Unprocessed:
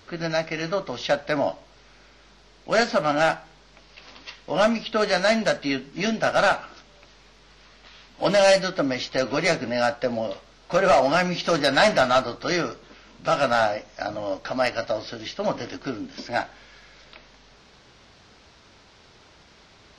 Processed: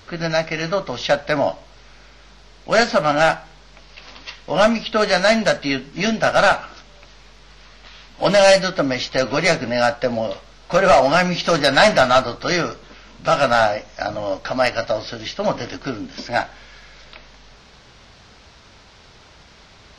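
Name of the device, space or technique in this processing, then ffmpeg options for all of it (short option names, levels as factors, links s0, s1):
low shelf boost with a cut just above: -af "lowshelf=f=63:g=6.5,equalizer=f=330:t=o:w=0.89:g=-3.5,volume=1.88"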